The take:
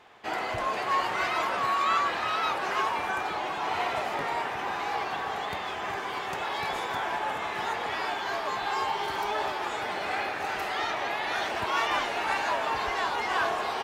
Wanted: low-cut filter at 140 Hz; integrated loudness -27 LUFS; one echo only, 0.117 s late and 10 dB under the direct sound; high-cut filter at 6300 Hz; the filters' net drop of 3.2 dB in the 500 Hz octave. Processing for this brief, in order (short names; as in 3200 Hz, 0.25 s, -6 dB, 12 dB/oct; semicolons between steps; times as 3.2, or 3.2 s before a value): HPF 140 Hz; LPF 6300 Hz; bell 500 Hz -4.5 dB; echo 0.117 s -10 dB; gain +2.5 dB